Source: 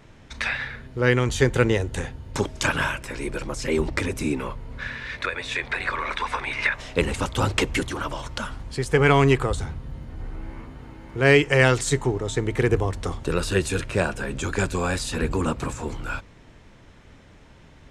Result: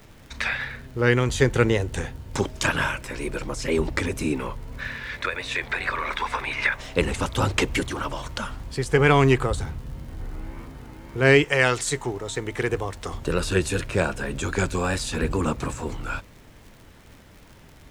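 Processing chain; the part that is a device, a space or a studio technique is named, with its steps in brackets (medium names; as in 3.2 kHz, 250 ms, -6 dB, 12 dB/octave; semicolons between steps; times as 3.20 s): 11.44–13.13 s: bass shelf 410 Hz -8.5 dB; vinyl LP (wow and flutter; crackle 77 per s -39 dBFS; pink noise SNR 34 dB)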